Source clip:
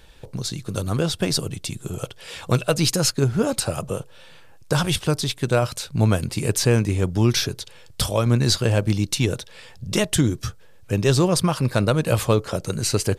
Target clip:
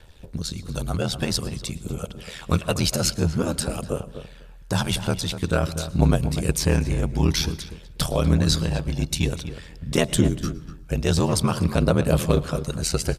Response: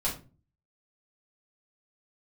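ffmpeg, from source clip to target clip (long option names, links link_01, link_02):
-filter_complex "[0:a]aeval=exprs='val(0)*sin(2*PI*40*n/s)':channel_layout=same,asettb=1/sr,asplit=3[link_01][link_02][link_03];[link_01]atrim=end=8.594[link_04];[link_02]atrim=start=8.59:end=8.99,asetpts=PTS-STARTPTS,afade=type=in:duration=0.004:curve=qsin,afade=type=out:start_time=0.396:duration=0.004:curve=qsin,acompressor=threshold=-22dB:ratio=6[link_05];[link_03]atrim=start=8.986[link_06];[link_04][link_05]acrossfade=duration=0.004:curve1=hsin:curve2=qsin[link_07];[link_07][link_06]acrossfade=duration=0.004:curve1=qsin:curve2=hsin,aphaser=in_gain=1:out_gain=1:delay=1.5:decay=0.32:speed=0.5:type=triangular,asplit=2[link_08][link_09];[link_09]adelay=244,lowpass=frequency=1800:poles=1,volume=-10.5dB,asplit=2[link_10][link_11];[link_11]adelay=244,lowpass=frequency=1800:poles=1,volume=0.16[link_12];[link_08][link_10][link_12]amix=inputs=3:normalize=0,asplit=2[link_13][link_14];[1:a]atrim=start_sample=2205,adelay=107[link_15];[link_14][link_15]afir=irnorm=-1:irlink=0,volume=-26dB[link_16];[link_13][link_16]amix=inputs=2:normalize=0"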